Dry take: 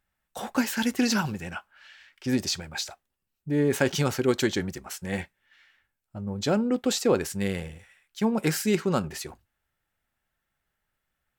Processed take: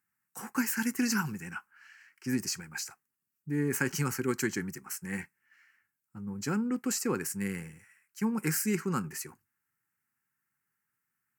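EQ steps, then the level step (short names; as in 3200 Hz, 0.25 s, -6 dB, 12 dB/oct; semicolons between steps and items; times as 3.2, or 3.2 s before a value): HPF 120 Hz 24 dB/oct; high shelf 4000 Hz +6.5 dB; fixed phaser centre 1500 Hz, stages 4; -3.0 dB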